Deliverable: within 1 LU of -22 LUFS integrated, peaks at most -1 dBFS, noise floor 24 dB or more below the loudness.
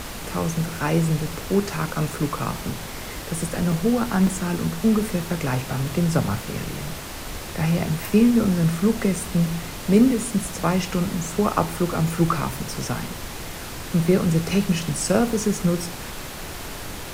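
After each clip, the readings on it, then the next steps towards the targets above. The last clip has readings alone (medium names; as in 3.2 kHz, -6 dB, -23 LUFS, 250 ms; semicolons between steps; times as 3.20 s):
dropouts 4; longest dropout 2.9 ms; noise floor -34 dBFS; noise floor target -48 dBFS; loudness -23.5 LUFS; peak level -4.0 dBFS; loudness target -22.0 LUFS
-> interpolate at 3.72/4.27/8.45/9.16 s, 2.9 ms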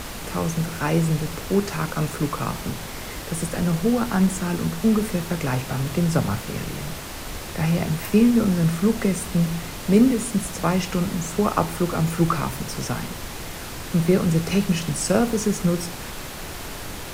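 dropouts 0; noise floor -34 dBFS; noise floor target -48 dBFS
-> noise print and reduce 14 dB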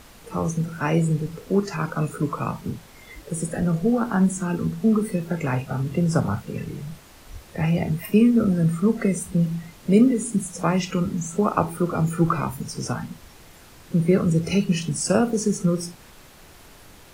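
noise floor -48 dBFS; loudness -23.0 LUFS; peak level -4.5 dBFS; loudness target -22.0 LUFS
-> trim +1 dB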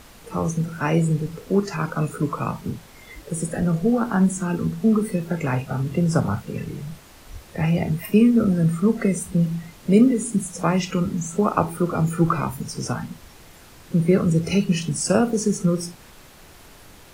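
loudness -22.0 LUFS; peak level -3.5 dBFS; noise floor -47 dBFS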